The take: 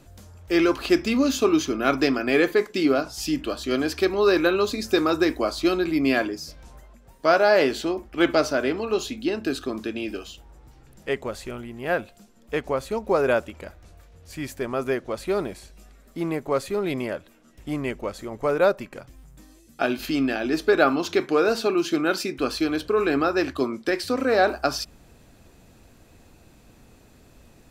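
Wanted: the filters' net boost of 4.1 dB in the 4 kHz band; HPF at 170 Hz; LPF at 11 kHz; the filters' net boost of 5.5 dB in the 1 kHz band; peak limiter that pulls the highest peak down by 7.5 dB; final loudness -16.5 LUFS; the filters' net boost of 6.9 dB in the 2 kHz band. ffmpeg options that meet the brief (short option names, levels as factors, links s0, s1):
-af "highpass=170,lowpass=11000,equalizer=f=1000:t=o:g=5.5,equalizer=f=2000:t=o:g=6.5,equalizer=f=4000:t=o:g=3,volume=2,alimiter=limit=0.794:level=0:latency=1"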